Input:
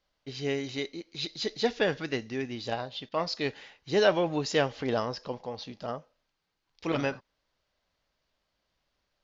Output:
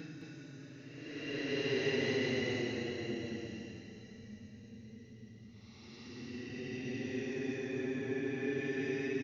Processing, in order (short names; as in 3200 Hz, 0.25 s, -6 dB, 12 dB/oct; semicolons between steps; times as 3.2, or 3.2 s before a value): Paulstretch 26×, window 0.05 s, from 2.07; echo 0.214 s -3.5 dB; gain -7.5 dB